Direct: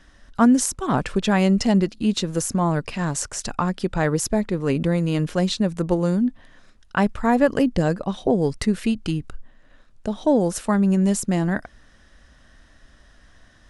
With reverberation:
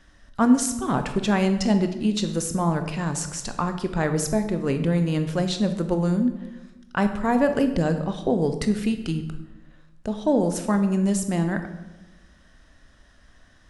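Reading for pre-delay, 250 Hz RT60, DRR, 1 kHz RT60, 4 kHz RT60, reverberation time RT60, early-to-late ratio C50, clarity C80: 17 ms, 1.3 s, 7.5 dB, 1.0 s, 0.75 s, 1.1 s, 9.5 dB, 12.0 dB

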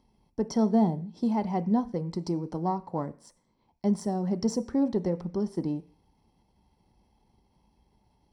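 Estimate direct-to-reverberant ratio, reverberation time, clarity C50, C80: 11.0 dB, 0.45 s, 19.0 dB, 23.0 dB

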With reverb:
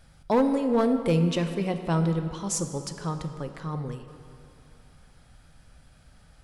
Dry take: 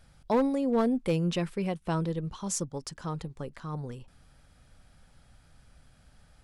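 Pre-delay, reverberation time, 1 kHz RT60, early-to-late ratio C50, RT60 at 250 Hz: 3 ms, 2.6 s, 2.7 s, 8.5 dB, 2.5 s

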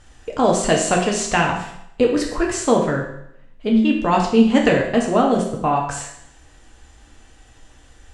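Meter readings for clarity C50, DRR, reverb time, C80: 5.0 dB, -1.0 dB, 0.75 s, 8.0 dB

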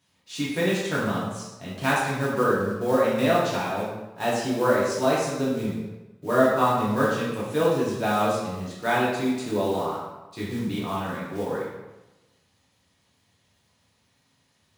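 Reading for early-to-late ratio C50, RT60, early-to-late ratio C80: 0.5 dB, 1.1 s, 3.0 dB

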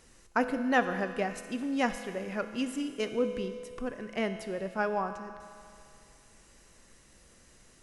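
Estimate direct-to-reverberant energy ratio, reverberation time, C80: 7.5 dB, 2.4 s, 9.5 dB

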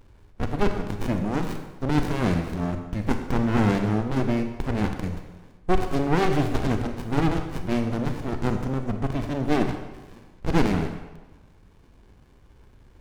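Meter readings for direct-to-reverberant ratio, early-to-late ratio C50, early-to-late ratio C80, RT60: 6.0 dB, 7.0 dB, 8.5 dB, 1.1 s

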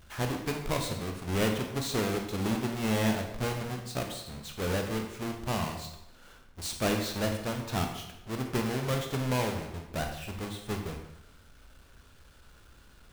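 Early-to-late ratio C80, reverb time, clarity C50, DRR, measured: 8.5 dB, 0.90 s, 5.5 dB, 3.0 dB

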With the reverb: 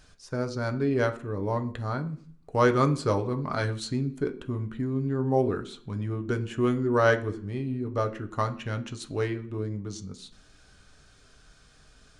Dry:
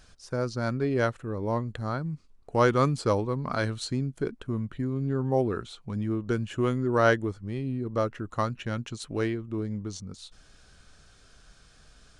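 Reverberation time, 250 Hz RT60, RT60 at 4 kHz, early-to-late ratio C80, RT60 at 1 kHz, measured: 0.50 s, 0.70 s, 0.55 s, 19.0 dB, 0.50 s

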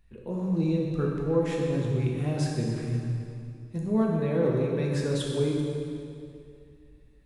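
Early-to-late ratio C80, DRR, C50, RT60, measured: 1.5 dB, -2.5 dB, 0.0 dB, 2.4 s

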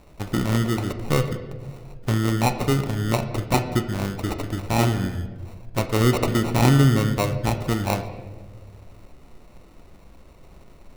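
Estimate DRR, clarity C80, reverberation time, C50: 6.5 dB, 11.5 dB, 1.6 s, 10.0 dB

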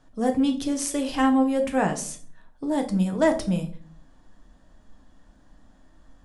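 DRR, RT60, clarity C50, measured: 4.0 dB, 0.45 s, 12.5 dB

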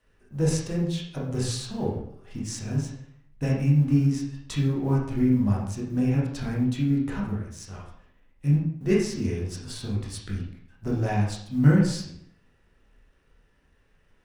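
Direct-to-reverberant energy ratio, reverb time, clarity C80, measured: -4.5 dB, 0.65 s, 7.0 dB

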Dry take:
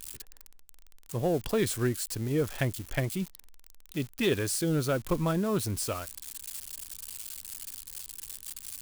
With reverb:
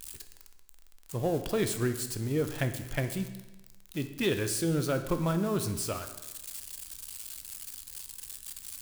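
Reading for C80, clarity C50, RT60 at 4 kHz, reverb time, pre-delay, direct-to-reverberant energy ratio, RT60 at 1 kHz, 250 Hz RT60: 12.0 dB, 10.5 dB, 1.0 s, 1.1 s, 15 ms, 8.0 dB, 1.1 s, 1.1 s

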